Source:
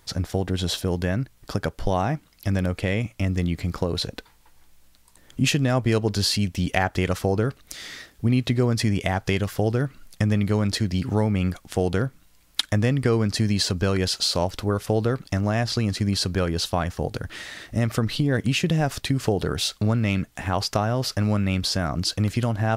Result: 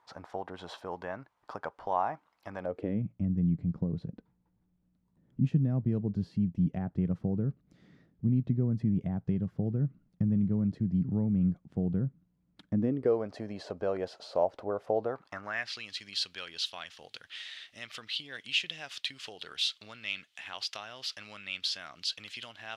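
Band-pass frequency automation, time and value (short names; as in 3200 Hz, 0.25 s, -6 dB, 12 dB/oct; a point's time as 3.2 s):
band-pass, Q 2.6
2.58 s 940 Hz
3.01 s 170 Hz
12.64 s 170 Hz
13.17 s 630 Hz
15.02 s 630 Hz
15.84 s 3200 Hz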